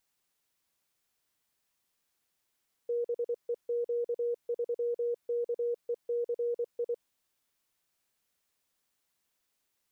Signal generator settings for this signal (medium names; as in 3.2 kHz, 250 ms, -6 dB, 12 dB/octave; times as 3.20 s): Morse "BEQ3KECI" 24 wpm 476 Hz -28 dBFS